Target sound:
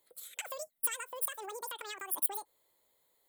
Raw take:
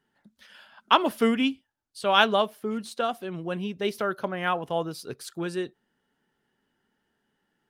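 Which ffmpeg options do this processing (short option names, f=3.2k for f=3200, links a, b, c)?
-af "acompressor=threshold=-37dB:ratio=6,aexciter=amount=10.4:drive=5.4:freq=3.9k,asetrate=103194,aresample=44100,volume=-3.5dB"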